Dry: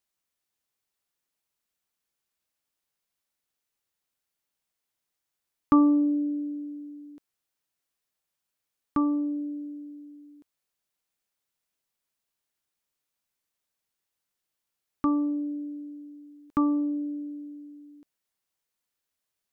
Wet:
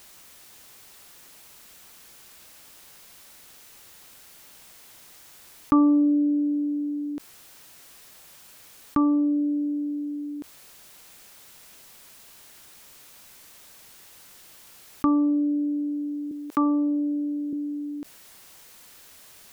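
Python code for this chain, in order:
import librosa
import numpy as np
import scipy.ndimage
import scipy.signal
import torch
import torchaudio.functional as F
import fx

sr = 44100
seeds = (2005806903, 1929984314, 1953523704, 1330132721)

y = fx.highpass(x, sr, hz=310.0, slope=12, at=(16.31, 17.53))
y = fx.env_flatten(y, sr, amount_pct=50)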